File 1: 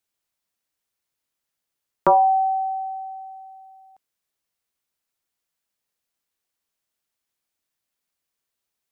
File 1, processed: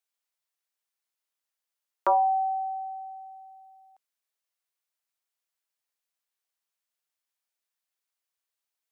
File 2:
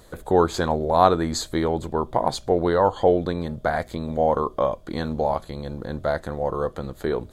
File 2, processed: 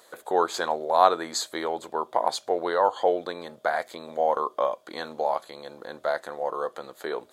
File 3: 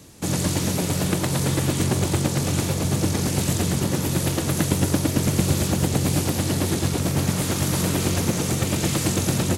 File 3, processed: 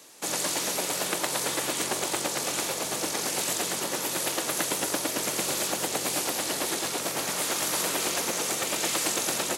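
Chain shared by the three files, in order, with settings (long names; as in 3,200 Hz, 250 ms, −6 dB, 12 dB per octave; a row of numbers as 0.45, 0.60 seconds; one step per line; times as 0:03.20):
high-pass filter 560 Hz 12 dB per octave
loudness normalisation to −27 LKFS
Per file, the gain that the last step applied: −5.0, −0.5, 0.0 decibels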